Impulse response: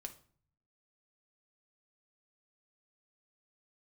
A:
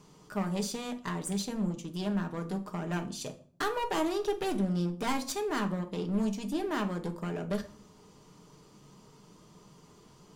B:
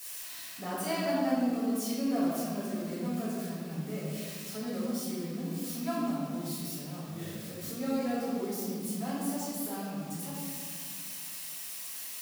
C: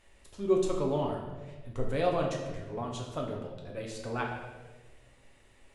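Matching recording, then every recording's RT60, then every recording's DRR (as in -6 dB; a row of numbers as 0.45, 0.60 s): A; 0.50, 2.0, 1.3 s; 5.0, -11.0, -1.0 dB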